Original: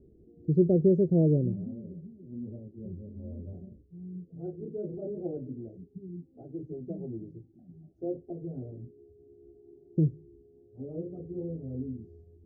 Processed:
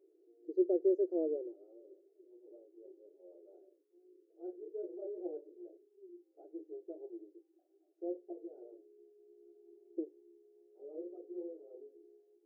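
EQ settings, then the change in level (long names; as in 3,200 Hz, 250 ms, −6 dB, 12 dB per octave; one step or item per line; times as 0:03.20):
linear-phase brick-wall high-pass 310 Hz
−5.5 dB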